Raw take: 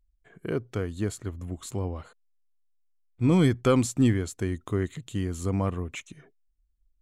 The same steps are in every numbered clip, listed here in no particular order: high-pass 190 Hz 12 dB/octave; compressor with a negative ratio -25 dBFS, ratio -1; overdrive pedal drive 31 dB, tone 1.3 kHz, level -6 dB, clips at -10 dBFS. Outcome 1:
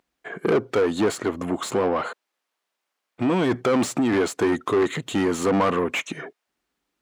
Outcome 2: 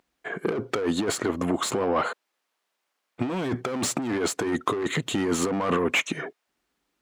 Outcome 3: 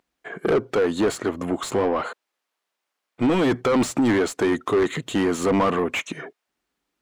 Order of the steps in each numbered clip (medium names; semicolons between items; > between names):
compressor with a negative ratio > overdrive pedal > high-pass; overdrive pedal > high-pass > compressor with a negative ratio; high-pass > compressor with a negative ratio > overdrive pedal